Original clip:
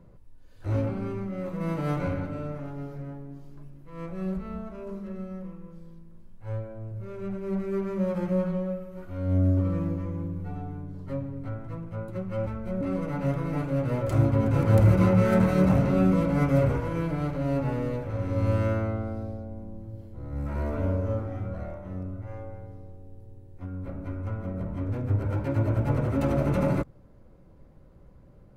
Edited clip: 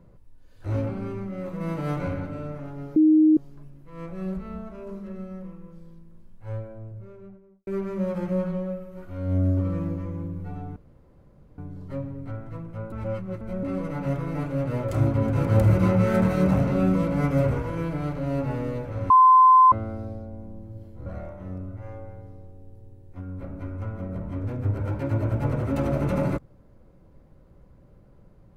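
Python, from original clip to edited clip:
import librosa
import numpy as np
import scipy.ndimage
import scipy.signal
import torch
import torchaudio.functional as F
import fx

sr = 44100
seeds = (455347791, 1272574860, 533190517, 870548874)

y = fx.studio_fade_out(x, sr, start_s=6.54, length_s=1.13)
y = fx.edit(y, sr, fx.bleep(start_s=2.96, length_s=0.41, hz=311.0, db=-13.0),
    fx.insert_room_tone(at_s=10.76, length_s=0.82),
    fx.reverse_span(start_s=12.1, length_s=0.49),
    fx.bleep(start_s=18.28, length_s=0.62, hz=1030.0, db=-10.5),
    fx.cut(start_s=20.24, length_s=1.27), tone=tone)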